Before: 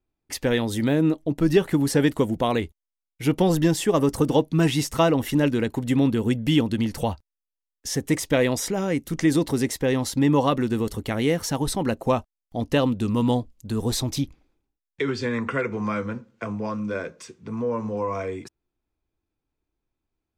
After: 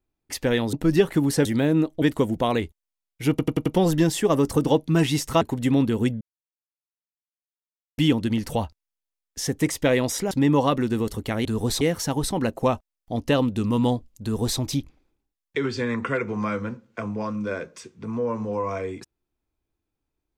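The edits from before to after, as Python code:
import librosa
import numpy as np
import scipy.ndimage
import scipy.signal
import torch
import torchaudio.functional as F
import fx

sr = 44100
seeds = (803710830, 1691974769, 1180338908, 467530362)

y = fx.edit(x, sr, fx.move(start_s=0.73, length_s=0.57, to_s=2.02),
    fx.stutter(start_s=3.3, slice_s=0.09, count=5),
    fx.cut(start_s=5.05, length_s=0.61),
    fx.insert_silence(at_s=6.46, length_s=1.77),
    fx.cut(start_s=8.79, length_s=1.32),
    fx.duplicate(start_s=13.67, length_s=0.36, to_s=11.25), tone=tone)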